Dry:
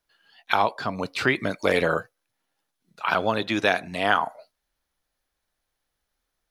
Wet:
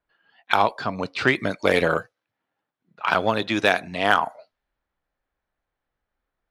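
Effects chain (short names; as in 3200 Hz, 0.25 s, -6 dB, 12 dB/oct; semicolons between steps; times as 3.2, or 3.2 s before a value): low-pass opened by the level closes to 2000 Hz, open at -19.5 dBFS; added harmonics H 5 -29 dB, 7 -26 dB, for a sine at -4 dBFS; gain +2.5 dB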